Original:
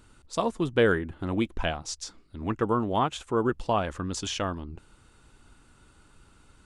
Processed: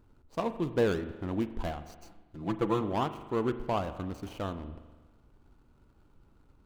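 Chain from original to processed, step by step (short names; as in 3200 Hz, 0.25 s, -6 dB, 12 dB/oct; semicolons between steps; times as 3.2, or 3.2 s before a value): median filter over 25 samples; 1.95–2.81 comb 5.9 ms, depth 72%; spring tank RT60 1.3 s, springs 40 ms, chirp 65 ms, DRR 11 dB; gain -4 dB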